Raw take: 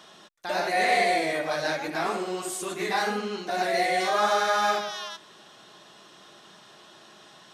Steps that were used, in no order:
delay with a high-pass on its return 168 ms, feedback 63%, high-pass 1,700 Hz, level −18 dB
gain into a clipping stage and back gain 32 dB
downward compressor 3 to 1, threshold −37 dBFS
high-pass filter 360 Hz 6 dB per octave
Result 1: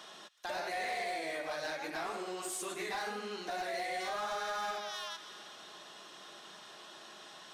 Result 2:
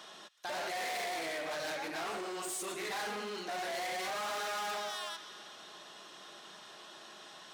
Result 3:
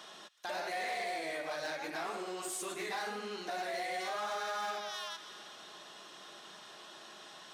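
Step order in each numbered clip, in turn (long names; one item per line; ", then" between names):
delay with a high-pass on its return, then downward compressor, then high-pass filter, then gain into a clipping stage and back
delay with a high-pass on its return, then gain into a clipping stage and back, then downward compressor, then high-pass filter
delay with a high-pass on its return, then downward compressor, then gain into a clipping stage and back, then high-pass filter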